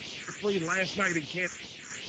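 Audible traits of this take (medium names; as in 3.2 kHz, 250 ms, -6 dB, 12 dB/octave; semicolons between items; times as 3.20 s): a quantiser's noise floor 6-bit, dither triangular; phasing stages 4, 2.5 Hz, lowest notch 690–1500 Hz; random-step tremolo 4.2 Hz; Speex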